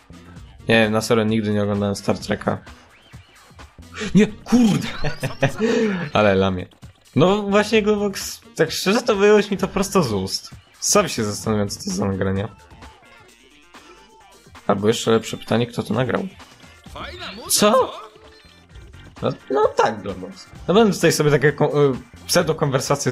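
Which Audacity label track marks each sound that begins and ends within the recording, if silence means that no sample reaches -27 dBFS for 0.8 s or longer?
3.970000	12.460000	sound
14.690000	18.040000	sound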